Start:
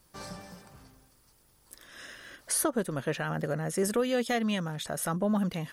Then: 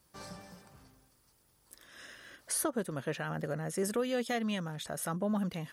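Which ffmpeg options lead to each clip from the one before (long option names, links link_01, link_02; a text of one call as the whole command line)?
ffmpeg -i in.wav -af "highpass=41,volume=-4.5dB" out.wav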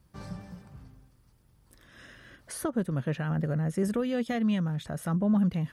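ffmpeg -i in.wav -af "bass=frequency=250:gain=13,treble=frequency=4000:gain=-7" out.wav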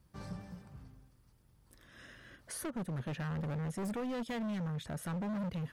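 ffmpeg -i in.wav -af "asoftclip=type=hard:threshold=-31.5dB,volume=-3.5dB" out.wav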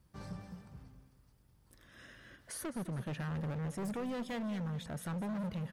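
ffmpeg -i in.wav -af "aecho=1:1:210|420|630|840:0.188|0.0772|0.0317|0.013,volume=-1dB" out.wav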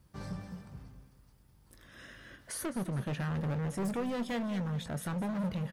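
ffmpeg -i in.wav -filter_complex "[0:a]asplit=2[link_01][link_02];[link_02]adelay=21,volume=-12.5dB[link_03];[link_01][link_03]amix=inputs=2:normalize=0,volume=4dB" out.wav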